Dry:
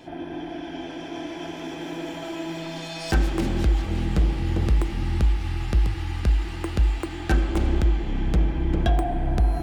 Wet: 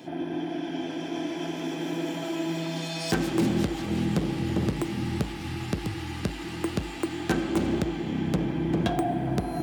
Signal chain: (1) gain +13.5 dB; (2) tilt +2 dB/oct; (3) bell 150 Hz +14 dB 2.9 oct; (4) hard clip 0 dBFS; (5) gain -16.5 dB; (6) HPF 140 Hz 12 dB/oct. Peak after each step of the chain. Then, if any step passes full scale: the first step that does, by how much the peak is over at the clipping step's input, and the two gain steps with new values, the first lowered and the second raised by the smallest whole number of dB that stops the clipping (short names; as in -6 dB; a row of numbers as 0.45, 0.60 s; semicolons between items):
+1.0, +5.5, +8.5, 0.0, -16.5, -11.0 dBFS; step 1, 8.5 dB; step 1 +4.5 dB, step 5 -7.5 dB